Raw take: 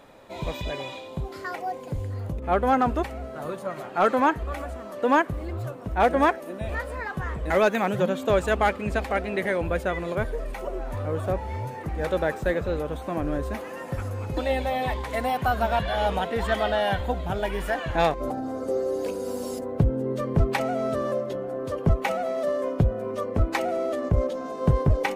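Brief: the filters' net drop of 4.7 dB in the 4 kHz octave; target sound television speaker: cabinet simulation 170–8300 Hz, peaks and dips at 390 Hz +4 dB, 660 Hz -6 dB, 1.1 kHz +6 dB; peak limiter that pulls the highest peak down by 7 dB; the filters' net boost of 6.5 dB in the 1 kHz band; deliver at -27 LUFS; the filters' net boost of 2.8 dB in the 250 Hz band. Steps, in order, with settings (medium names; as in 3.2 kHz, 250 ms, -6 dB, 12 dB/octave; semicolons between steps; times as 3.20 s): peaking EQ 250 Hz +3 dB; peaking EQ 1 kHz +7 dB; peaking EQ 4 kHz -7 dB; peak limiter -12.5 dBFS; cabinet simulation 170–8300 Hz, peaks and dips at 390 Hz +4 dB, 660 Hz -6 dB, 1.1 kHz +6 dB; trim -1.5 dB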